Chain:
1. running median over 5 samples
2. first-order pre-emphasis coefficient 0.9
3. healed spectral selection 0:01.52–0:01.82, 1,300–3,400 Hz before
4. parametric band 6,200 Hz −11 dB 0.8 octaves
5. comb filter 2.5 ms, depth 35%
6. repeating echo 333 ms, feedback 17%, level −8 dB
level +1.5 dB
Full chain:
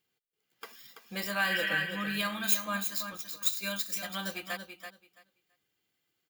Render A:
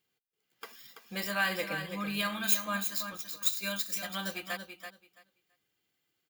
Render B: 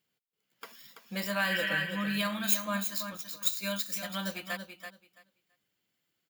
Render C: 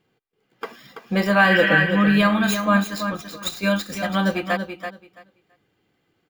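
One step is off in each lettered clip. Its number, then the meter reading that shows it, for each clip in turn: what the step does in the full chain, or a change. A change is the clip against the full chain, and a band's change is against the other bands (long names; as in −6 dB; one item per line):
3, 2 kHz band −2.5 dB
5, 250 Hz band +3.5 dB
2, 8 kHz band −16.5 dB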